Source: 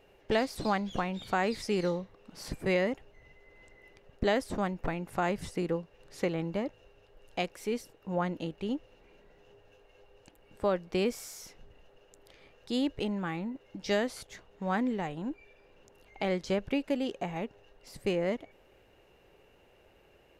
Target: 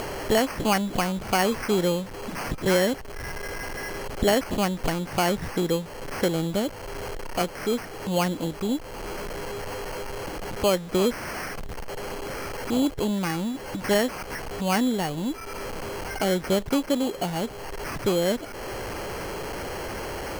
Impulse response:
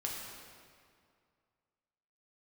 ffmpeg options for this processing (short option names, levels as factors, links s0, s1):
-af "aeval=exprs='val(0)+0.5*0.00841*sgn(val(0))':c=same,acrusher=samples=12:mix=1:aa=0.000001,acompressor=mode=upward:threshold=0.0224:ratio=2.5,volume=2"